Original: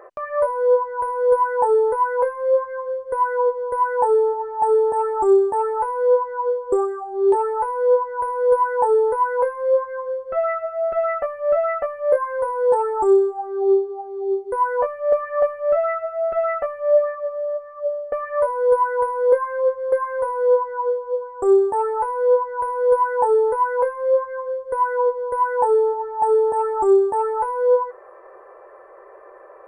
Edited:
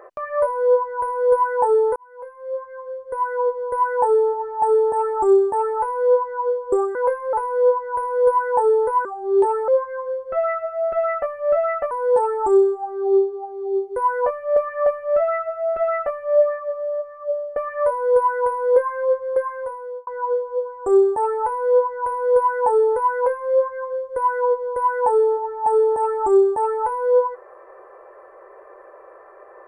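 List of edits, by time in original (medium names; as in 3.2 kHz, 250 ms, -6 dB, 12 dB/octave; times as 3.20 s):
1.96–3.76 s: fade in
6.95–7.58 s: swap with 9.30–9.68 s
11.91–12.47 s: delete
19.83–20.63 s: fade out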